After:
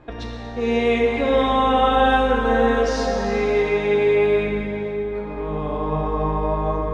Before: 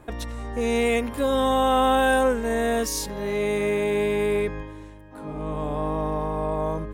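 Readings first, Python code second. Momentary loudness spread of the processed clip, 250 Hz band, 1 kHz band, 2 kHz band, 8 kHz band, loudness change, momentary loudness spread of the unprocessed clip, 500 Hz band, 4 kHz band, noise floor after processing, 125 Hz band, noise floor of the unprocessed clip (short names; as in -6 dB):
10 LU, +3.0 dB, +4.5 dB, +3.5 dB, n/a, +4.0 dB, 15 LU, +4.5 dB, +2.5 dB, -32 dBFS, +4.0 dB, -41 dBFS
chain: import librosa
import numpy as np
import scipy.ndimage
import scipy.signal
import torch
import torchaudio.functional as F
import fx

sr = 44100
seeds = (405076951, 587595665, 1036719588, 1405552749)

y = scipy.signal.sosfilt(scipy.signal.butter(4, 5000.0, 'lowpass', fs=sr, output='sos'), x)
y = fx.rev_plate(y, sr, seeds[0], rt60_s=4.4, hf_ratio=0.55, predelay_ms=0, drr_db=-2.0)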